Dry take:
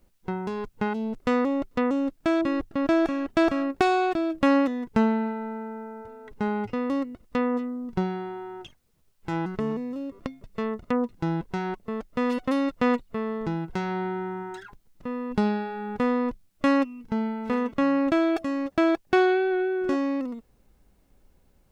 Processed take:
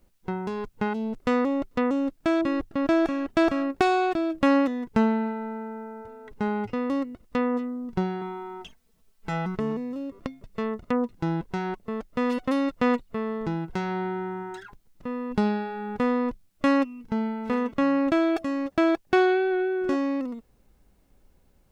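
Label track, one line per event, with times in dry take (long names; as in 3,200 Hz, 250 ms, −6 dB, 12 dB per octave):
8.210000	9.550000	comb filter 4.5 ms, depth 78%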